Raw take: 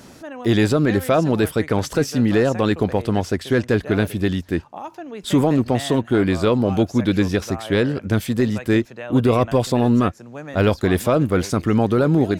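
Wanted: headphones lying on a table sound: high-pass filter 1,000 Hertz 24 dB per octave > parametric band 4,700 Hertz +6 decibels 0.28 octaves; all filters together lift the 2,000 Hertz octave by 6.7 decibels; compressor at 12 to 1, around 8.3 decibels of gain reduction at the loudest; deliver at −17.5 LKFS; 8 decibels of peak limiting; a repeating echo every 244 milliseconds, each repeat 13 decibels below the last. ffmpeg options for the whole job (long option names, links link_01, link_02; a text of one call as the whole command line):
ffmpeg -i in.wav -af "equalizer=frequency=2000:width_type=o:gain=8.5,acompressor=threshold=-20dB:ratio=12,alimiter=limit=-18dB:level=0:latency=1,highpass=frequency=1000:width=0.5412,highpass=frequency=1000:width=1.3066,equalizer=frequency=4700:width_type=o:width=0.28:gain=6,aecho=1:1:244|488|732:0.224|0.0493|0.0108,volume=16.5dB" out.wav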